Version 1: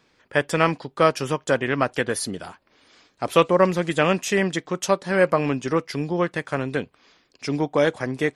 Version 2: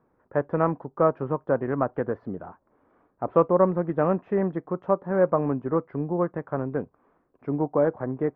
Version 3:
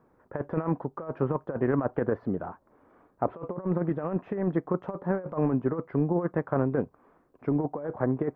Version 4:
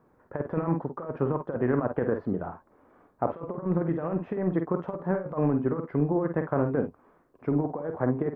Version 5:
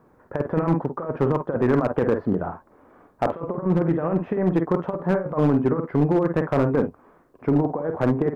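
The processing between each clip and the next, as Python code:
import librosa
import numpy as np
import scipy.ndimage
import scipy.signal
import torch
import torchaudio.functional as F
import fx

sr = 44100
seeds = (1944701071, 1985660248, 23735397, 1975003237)

y1 = scipy.signal.sosfilt(scipy.signal.butter(4, 1200.0, 'lowpass', fs=sr, output='sos'), x)
y1 = y1 * librosa.db_to_amplitude(-2.0)
y2 = fx.over_compress(y1, sr, threshold_db=-26.0, ratio=-0.5)
y3 = fx.room_early_taps(y2, sr, ms=(48, 60), db=(-8.0, -14.5))
y4 = np.clip(y3, -10.0 ** (-19.0 / 20.0), 10.0 ** (-19.0 / 20.0))
y4 = y4 * librosa.db_to_amplitude(6.5)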